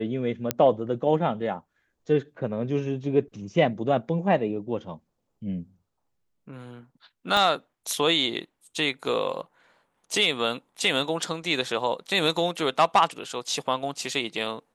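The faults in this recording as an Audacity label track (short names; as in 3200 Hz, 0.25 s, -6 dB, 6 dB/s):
0.510000	0.510000	pop -6 dBFS
7.370000	7.370000	pop -12 dBFS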